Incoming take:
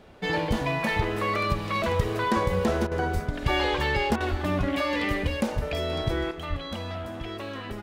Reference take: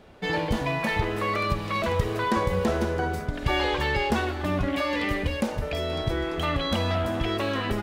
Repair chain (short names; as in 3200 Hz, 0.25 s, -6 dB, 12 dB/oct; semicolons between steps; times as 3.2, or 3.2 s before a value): de-plosive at 3.13/4.3/5.55/6.49; interpolate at 2.87/4.16, 43 ms; gain 0 dB, from 6.31 s +8.5 dB